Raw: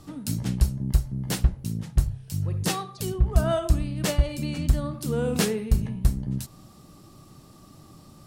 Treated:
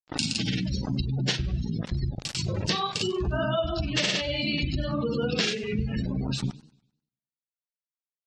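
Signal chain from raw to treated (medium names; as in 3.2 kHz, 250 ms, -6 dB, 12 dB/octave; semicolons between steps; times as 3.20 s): frequency weighting D; granulator, grains 20 per s, pitch spread up and down by 0 st; hum notches 50/100/150/200/250 Hz; early reflections 23 ms -14.5 dB, 38 ms -6.5 dB, 52 ms -13 dB; word length cut 6-bit, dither none; distance through air 62 m; spectral gate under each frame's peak -20 dB strong; compression 6:1, threshold -32 dBFS, peak gain reduction 14 dB; gate -42 dBFS, range -19 dB; modulated delay 99 ms, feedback 40%, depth 203 cents, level -19.5 dB; trim +8 dB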